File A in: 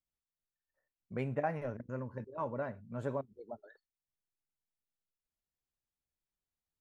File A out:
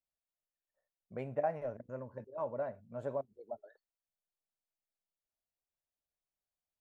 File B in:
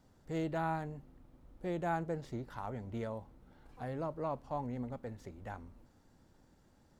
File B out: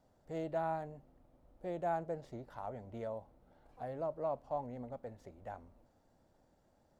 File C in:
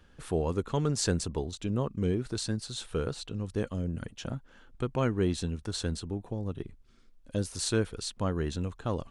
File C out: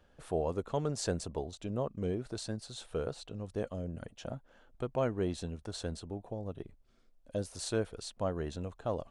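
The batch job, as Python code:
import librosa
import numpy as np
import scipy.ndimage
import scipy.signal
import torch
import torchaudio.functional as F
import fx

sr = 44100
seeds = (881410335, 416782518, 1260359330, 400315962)

y = fx.peak_eq(x, sr, hz=640.0, db=11.0, octaves=0.85)
y = F.gain(torch.from_numpy(y), -7.5).numpy()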